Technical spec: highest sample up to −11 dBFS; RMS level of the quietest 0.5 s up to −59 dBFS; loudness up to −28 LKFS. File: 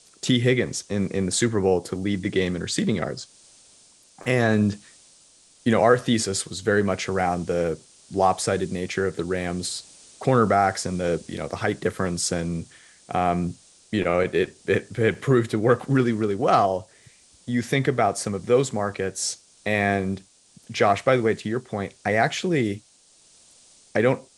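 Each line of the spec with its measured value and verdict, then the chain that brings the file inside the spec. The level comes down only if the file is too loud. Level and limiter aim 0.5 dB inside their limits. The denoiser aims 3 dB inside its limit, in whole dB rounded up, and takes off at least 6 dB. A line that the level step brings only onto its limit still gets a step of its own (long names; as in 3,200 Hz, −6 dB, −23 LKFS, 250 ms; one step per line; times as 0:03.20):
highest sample −4.5 dBFS: out of spec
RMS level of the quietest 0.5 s −57 dBFS: out of spec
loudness −23.5 LKFS: out of spec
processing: level −5 dB
brickwall limiter −11.5 dBFS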